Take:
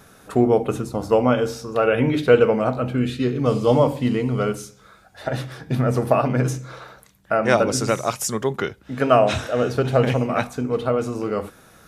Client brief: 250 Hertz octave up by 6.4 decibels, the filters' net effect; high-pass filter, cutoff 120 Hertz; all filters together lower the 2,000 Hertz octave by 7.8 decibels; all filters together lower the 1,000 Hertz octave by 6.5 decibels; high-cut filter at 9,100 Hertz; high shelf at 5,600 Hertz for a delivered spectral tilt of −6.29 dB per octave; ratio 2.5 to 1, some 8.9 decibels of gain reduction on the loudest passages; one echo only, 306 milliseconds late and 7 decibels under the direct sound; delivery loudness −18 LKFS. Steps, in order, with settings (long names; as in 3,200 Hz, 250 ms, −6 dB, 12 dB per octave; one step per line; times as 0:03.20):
high-pass filter 120 Hz
low-pass filter 9,100 Hz
parametric band 250 Hz +8 dB
parametric band 1,000 Hz −8.5 dB
parametric band 2,000 Hz −8 dB
high-shelf EQ 5,600 Hz +3.5 dB
downward compressor 2.5 to 1, threshold −22 dBFS
single-tap delay 306 ms −7 dB
level +6.5 dB